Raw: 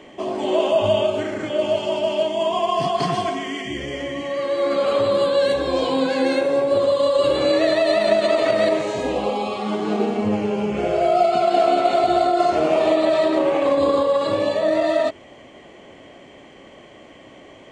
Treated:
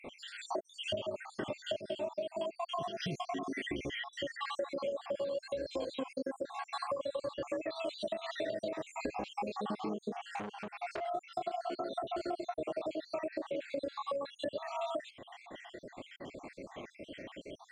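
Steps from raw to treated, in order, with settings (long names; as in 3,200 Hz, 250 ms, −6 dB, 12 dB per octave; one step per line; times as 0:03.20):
time-frequency cells dropped at random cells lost 67%
0:04.88–0:05.98: thirty-one-band graphic EQ 630 Hz +7 dB, 1,250 Hz −9 dB, 6,300 Hz +8 dB
downward compressor 12 to 1, threshold −34 dBFS, peak gain reduction 21.5 dB
0:10.20–0:11.08: saturating transformer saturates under 1,600 Hz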